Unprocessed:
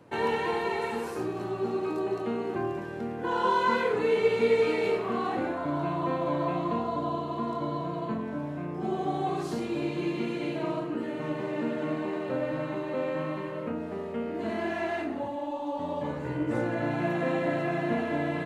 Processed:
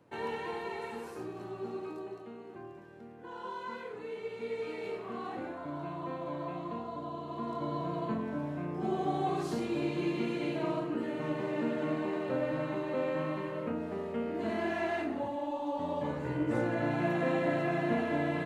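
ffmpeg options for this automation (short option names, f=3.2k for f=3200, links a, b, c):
-af "volume=5dB,afade=t=out:st=1.77:d=0.52:silence=0.446684,afade=t=in:st=4.31:d=0.95:silence=0.473151,afade=t=in:st=7.13:d=0.79:silence=0.421697"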